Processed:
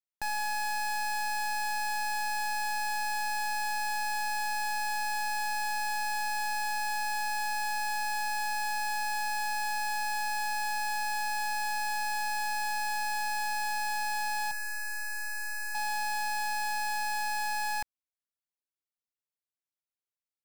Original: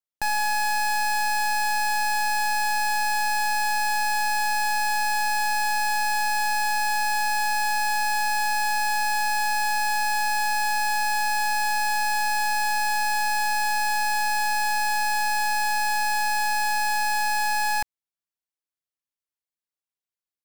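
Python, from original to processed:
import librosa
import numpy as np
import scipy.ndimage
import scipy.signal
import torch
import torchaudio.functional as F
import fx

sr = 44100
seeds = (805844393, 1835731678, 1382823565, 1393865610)

y = fx.fixed_phaser(x, sr, hz=890.0, stages=6, at=(14.51, 15.75))
y = y * librosa.db_to_amplitude(-8.0)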